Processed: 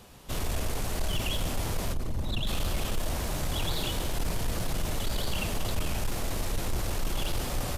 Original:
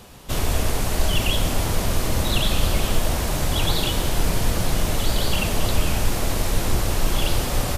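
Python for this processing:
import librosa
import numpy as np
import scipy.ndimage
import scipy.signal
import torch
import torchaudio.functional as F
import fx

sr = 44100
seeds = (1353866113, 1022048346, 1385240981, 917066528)

y = fx.envelope_sharpen(x, sr, power=1.5, at=(1.92, 2.46), fade=0.02)
y = 10.0 ** (-14.5 / 20.0) * np.tanh(y / 10.0 ** (-14.5 / 20.0))
y = F.gain(torch.from_numpy(y), -7.0).numpy()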